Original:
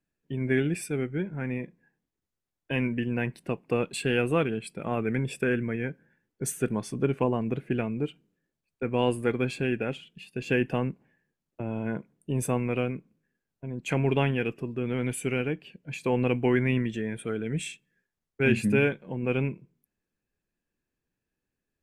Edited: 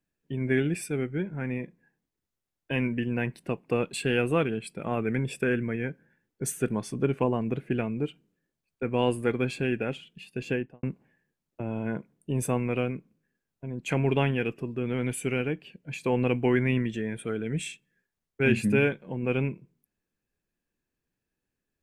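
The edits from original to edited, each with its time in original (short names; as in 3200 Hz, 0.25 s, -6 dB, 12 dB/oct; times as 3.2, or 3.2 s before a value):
10.38–10.83 studio fade out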